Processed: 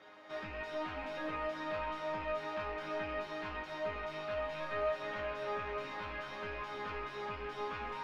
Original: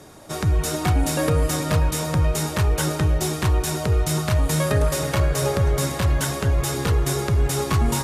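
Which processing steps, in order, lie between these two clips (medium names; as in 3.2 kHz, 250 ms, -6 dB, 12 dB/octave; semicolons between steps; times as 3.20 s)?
rattle on loud lows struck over -22 dBFS, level -22 dBFS; high-pass 55 Hz 24 dB/octave; tilt shelf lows -8 dB, about 800 Hz; overload inside the chain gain 25.5 dB; overdrive pedal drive 8 dB, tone 2.5 kHz, clips at -25 dBFS; distance through air 310 m; chord resonator G#3 major, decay 0.29 s; trim +8.5 dB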